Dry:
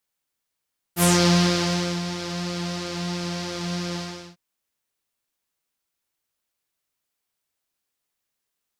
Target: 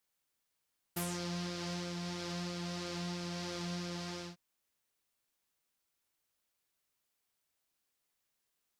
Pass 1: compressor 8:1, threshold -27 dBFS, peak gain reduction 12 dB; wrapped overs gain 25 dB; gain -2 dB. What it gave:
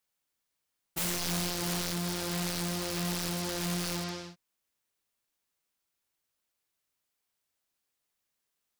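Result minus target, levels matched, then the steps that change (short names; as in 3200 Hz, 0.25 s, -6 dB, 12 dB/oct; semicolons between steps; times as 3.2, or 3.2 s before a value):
compressor: peak gain reduction -7.5 dB
change: compressor 8:1, threshold -35.5 dBFS, peak gain reduction 19.5 dB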